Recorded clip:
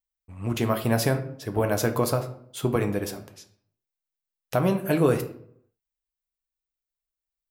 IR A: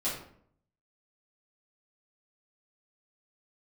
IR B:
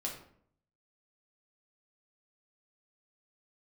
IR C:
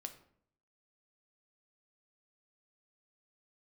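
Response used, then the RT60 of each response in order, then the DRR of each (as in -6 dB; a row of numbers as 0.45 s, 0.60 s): C; 0.60 s, 0.60 s, 0.65 s; -9.5 dB, -2.0 dB, 6.5 dB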